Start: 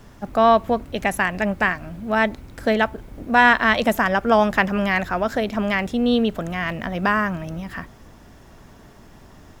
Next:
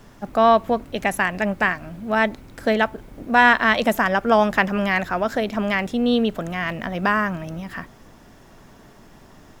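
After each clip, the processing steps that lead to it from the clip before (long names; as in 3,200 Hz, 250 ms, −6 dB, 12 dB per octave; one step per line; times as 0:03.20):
parametric band 62 Hz −8.5 dB 1.2 octaves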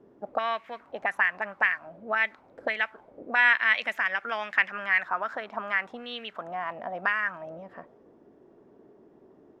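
envelope filter 360–2,200 Hz, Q 2.9, up, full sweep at −15.5 dBFS
level +1 dB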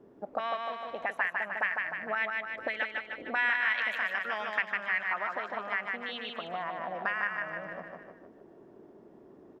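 repeating echo 152 ms, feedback 48%, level −4 dB
downward compressor 1.5 to 1, threshold −38 dBFS, peak gain reduction 8 dB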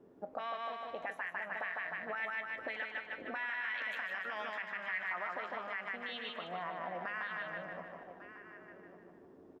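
brickwall limiter −25 dBFS, peak gain reduction 10 dB
tuned comb filter 89 Hz, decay 0.21 s, harmonics all, mix 60%
single-tap delay 1,148 ms −13.5 dB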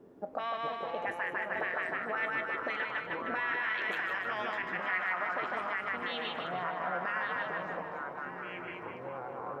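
delay with pitch and tempo change per echo 337 ms, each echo −5 semitones, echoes 3, each echo −6 dB
level +4.5 dB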